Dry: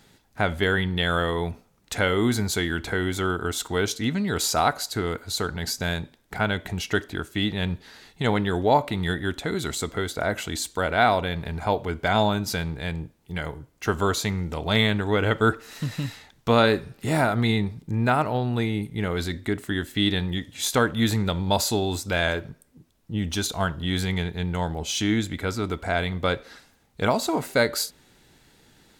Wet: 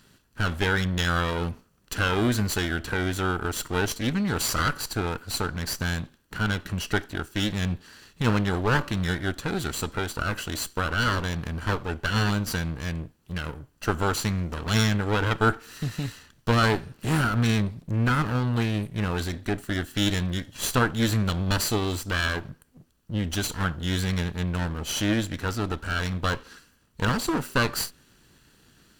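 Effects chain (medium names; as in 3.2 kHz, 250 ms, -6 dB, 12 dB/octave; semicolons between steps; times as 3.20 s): comb filter that takes the minimum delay 0.67 ms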